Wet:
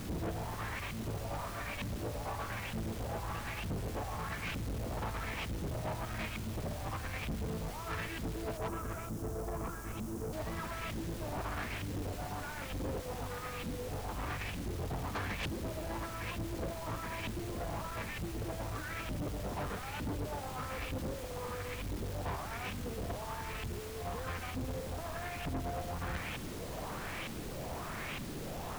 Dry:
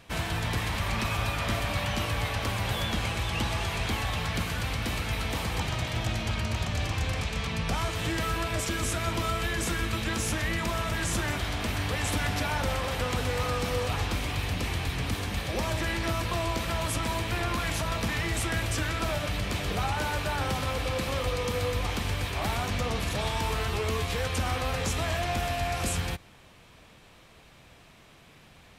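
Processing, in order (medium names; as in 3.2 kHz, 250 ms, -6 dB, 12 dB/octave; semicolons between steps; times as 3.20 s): LFO low-pass saw up 1.1 Hz 230–3000 Hz; compressor with a negative ratio -36 dBFS, ratio -0.5; added noise pink -49 dBFS; 8.57–10.33 s: high-order bell 2.8 kHz -11.5 dB; saturation -37 dBFS, distortion -8 dB; trim +3.5 dB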